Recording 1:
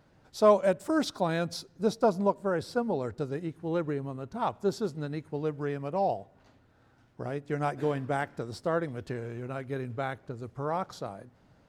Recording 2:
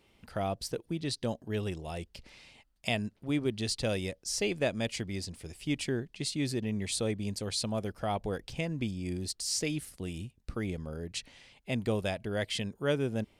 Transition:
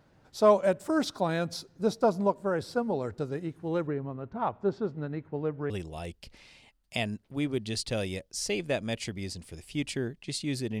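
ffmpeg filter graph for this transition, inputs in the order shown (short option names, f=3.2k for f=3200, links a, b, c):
-filter_complex "[0:a]asettb=1/sr,asplit=3[a][b][c];[a]atrim=end=3.874[d];[b]atrim=start=3.87:end=5.7,asetpts=PTS-STARTPTS,afade=t=in:d=0.004:c=qsin,afade=t=out:st=1.826:d=0.004:c=qsin,lowpass=2.3k[e];[c]atrim=start=5.696[f];[d][e]acrossfade=d=0.004:c1=hsin:c2=qsin[g];[g][f]acrossfade=d=0.004:c1=qsin:c2=hsin,apad=whole_dur=10.8,atrim=end=10.8,atrim=end=5.702[h];[1:a]atrim=start=1.618:end=6.72[i];[h][i]acrossfade=d=0.004:c1=hsin:c2=hsin"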